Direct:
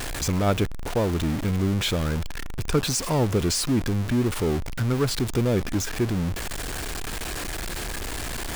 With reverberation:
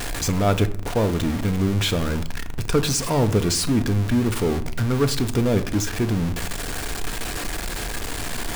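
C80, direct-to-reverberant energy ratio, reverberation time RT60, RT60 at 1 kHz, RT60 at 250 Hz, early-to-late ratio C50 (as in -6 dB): 19.0 dB, 9.0 dB, 0.60 s, 0.55 s, 0.85 s, 15.5 dB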